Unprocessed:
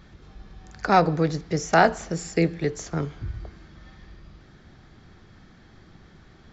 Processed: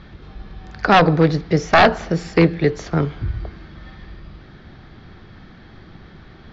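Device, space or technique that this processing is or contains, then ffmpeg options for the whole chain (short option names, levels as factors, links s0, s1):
synthesiser wavefolder: -af "aeval=exprs='0.224*(abs(mod(val(0)/0.224+3,4)-2)-1)':c=same,lowpass=f=4600:w=0.5412,lowpass=f=4600:w=1.3066,volume=2.66"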